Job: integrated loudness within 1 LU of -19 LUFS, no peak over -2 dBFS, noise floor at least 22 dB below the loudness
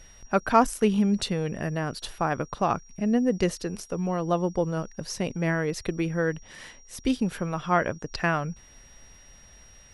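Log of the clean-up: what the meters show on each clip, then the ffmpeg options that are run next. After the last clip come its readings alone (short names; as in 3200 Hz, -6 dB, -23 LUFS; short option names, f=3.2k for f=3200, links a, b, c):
steady tone 5700 Hz; tone level -53 dBFS; loudness -27.0 LUFS; peak -7.0 dBFS; loudness target -19.0 LUFS
-> -af "bandreject=f=5.7k:w=30"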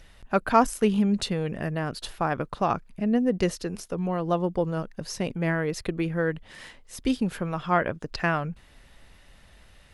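steady tone none; loudness -27.0 LUFS; peak -7.0 dBFS; loudness target -19.0 LUFS
-> -af "volume=8dB,alimiter=limit=-2dB:level=0:latency=1"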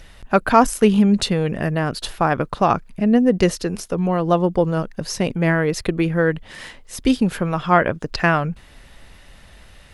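loudness -19.5 LUFS; peak -2.0 dBFS; noise floor -46 dBFS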